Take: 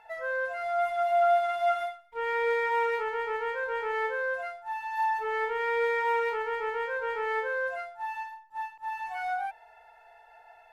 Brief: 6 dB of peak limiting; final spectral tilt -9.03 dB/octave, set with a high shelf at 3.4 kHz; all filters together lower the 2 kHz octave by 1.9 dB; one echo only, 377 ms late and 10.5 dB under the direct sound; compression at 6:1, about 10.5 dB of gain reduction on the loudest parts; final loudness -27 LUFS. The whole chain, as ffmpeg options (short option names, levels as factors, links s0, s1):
-af "equalizer=f=2000:t=o:g=-4.5,highshelf=f=3400:g=8,acompressor=threshold=0.0251:ratio=6,alimiter=level_in=2.51:limit=0.0631:level=0:latency=1,volume=0.398,aecho=1:1:377:0.299,volume=3.76"